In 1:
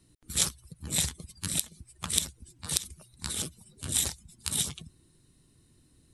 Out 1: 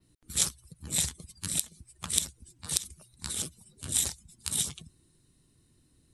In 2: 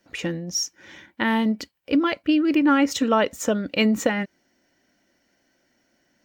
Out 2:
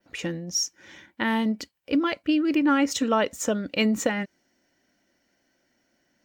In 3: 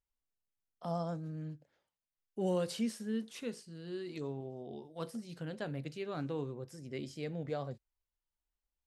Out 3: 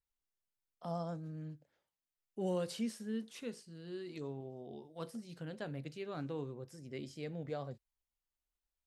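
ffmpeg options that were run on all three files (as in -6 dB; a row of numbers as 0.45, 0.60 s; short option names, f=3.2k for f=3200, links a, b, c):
-af "adynamicequalizer=threshold=0.00794:dfrequency=7700:dqfactor=0.9:tfrequency=7700:tqfactor=0.9:attack=5:release=100:ratio=0.375:range=2:mode=boostabove:tftype=bell,volume=-3dB"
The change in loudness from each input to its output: 0.0, -2.5, -3.0 LU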